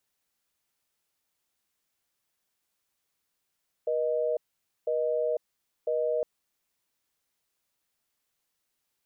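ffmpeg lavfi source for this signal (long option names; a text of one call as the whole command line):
ffmpeg -f lavfi -i "aevalsrc='0.0422*(sin(2*PI*480*t)+sin(2*PI*620*t))*clip(min(mod(t,1),0.5-mod(t,1))/0.005,0,1)':duration=2.36:sample_rate=44100" out.wav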